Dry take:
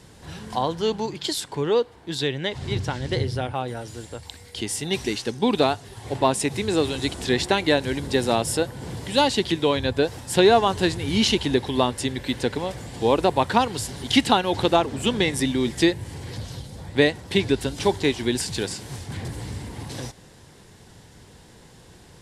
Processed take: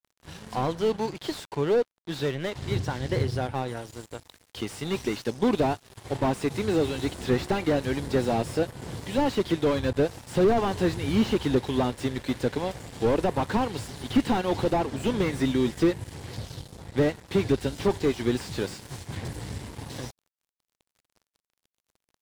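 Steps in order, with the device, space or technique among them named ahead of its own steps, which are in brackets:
early transistor amplifier (dead-zone distortion −40.5 dBFS; slew-rate limiting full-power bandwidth 56 Hz)

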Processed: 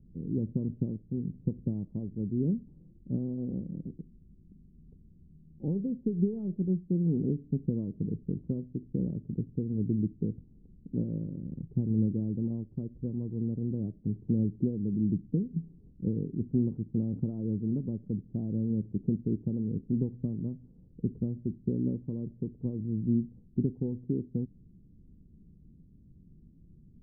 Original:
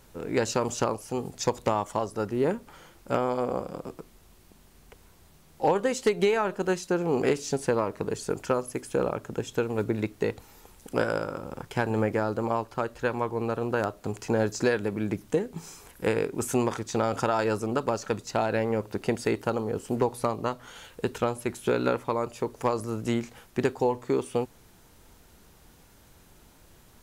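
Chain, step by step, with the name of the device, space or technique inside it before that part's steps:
0:00.68–0:01.83: high shelf with overshoot 1,900 Hz +11 dB, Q 3
the neighbour's flat through the wall (low-pass filter 280 Hz 24 dB per octave; parametric band 170 Hz +7 dB 0.81 octaves)

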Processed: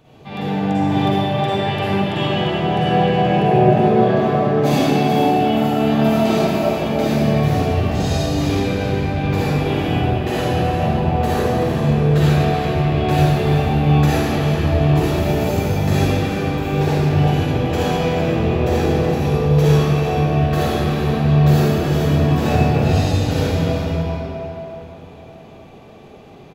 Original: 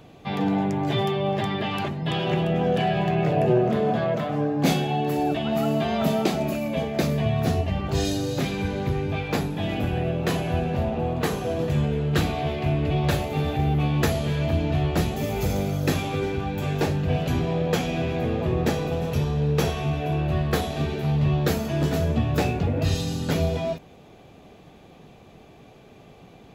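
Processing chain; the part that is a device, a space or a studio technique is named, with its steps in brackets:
cave (single-tap delay 377 ms −10.5 dB; convolution reverb RT60 3.8 s, pre-delay 41 ms, DRR −11 dB)
level −5 dB

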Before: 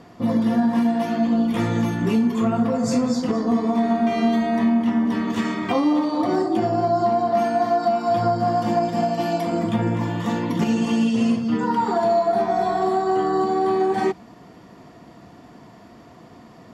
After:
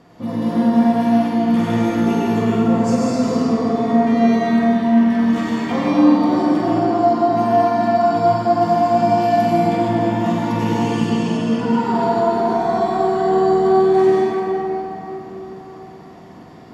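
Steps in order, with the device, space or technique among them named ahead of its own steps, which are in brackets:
tunnel (flutter between parallel walls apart 8.1 metres, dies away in 0.44 s; convolution reverb RT60 3.9 s, pre-delay 83 ms, DRR −6 dB)
level −4 dB

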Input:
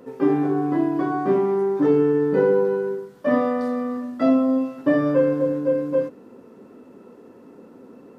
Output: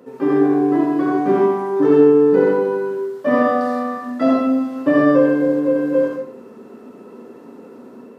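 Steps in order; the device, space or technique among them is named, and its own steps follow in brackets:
far laptop microphone (convolution reverb RT60 0.55 s, pre-delay 64 ms, DRR −1 dB; high-pass filter 120 Hz; automatic gain control gain up to 3.5 dB)

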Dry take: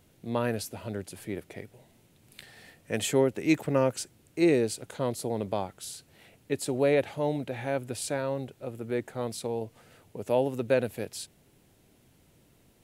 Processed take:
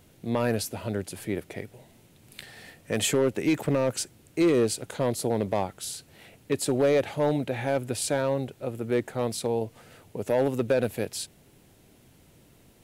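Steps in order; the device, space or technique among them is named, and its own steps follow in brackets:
limiter into clipper (brickwall limiter −17.5 dBFS, peak gain reduction 7 dB; hard clipping −21.5 dBFS, distortion −18 dB)
level +5 dB

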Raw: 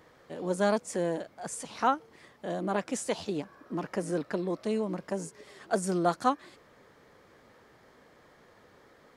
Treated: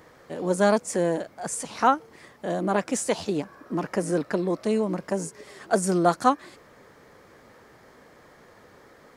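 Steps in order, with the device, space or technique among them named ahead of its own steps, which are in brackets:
exciter from parts (in parallel at −9.5 dB: high-pass filter 3,100 Hz 24 dB per octave + soft clipping −32 dBFS, distortion −17 dB)
on the sum: level +6 dB

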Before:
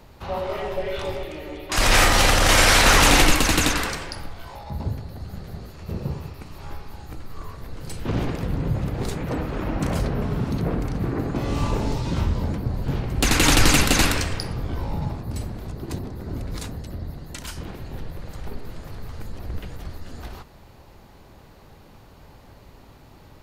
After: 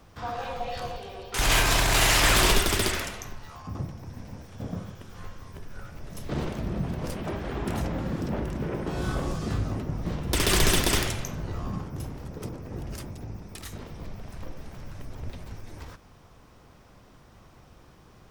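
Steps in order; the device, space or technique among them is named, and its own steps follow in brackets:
nightcore (speed change +28%)
level −5.5 dB

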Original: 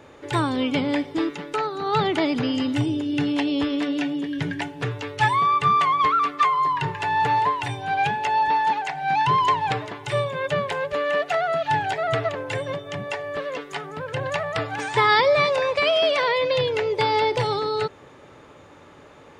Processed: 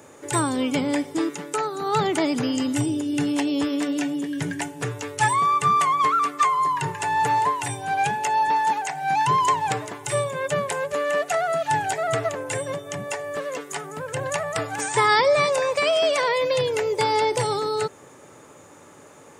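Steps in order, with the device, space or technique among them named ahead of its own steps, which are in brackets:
budget condenser microphone (high-pass filter 110 Hz; high shelf with overshoot 5,600 Hz +13.5 dB, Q 1.5)

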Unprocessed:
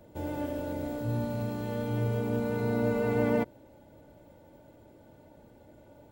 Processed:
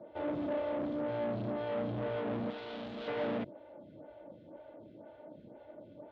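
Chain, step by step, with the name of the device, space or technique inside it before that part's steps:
vibe pedal into a guitar amplifier (phaser with staggered stages 2 Hz; tube saturation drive 41 dB, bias 0.6; loudspeaker in its box 78–3,700 Hz, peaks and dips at 79 Hz −8 dB, 200 Hz +3 dB, 320 Hz +4 dB, 620 Hz +8 dB, 3,400 Hz +4 dB)
0:02.50–0:03.08: octave-band graphic EQ 125/250/500/1,000/2,000/4,000/8,000 Hz −12/−3/−7/−5/−6/+6/+7 dB
level +5 dB

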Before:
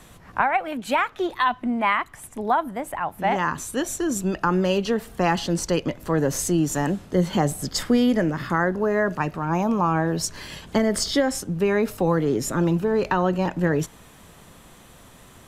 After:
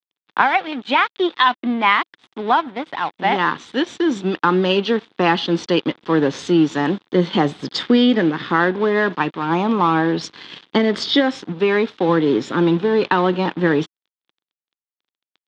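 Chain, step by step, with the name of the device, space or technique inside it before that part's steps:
0:11.52–0:12.09: low-shelf EQ 200 Hz −5 dB
blown loudspeaker (dead-zone distortion −38 dBFS; loudspeaker in its box 210–4,400 Hz, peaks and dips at 320 Hz +3 dB, 620 Hz −8 dB, 3,500 Hz +9 dB)
level +7 dB

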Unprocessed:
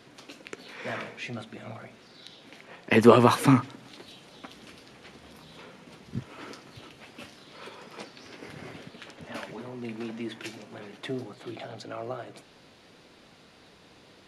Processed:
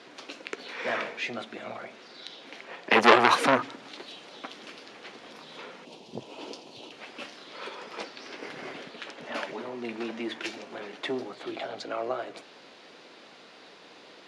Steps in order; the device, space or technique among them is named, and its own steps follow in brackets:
public-address speaker with an overloaded transformer (saturating transformer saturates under 2,100 Hz; band-pass filter 320–6,200 Hz)
0:05.85–0:06.92: flat-topped bell 1,600 Hz −14.5 dB 1.1 octaves
level +5.5 dB

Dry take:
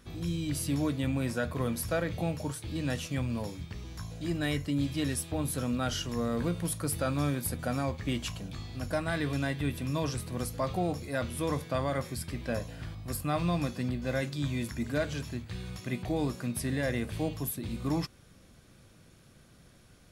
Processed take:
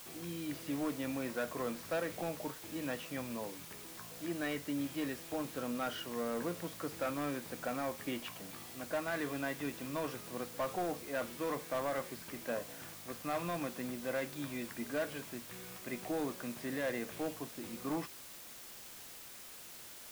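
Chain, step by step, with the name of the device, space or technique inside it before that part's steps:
aircraft radio (band-pass filter 310–2,400 Hz; hard clipping −28.5 dBFS, distortion −15 dB; white noise bed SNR 11 dB)
level −2 dB

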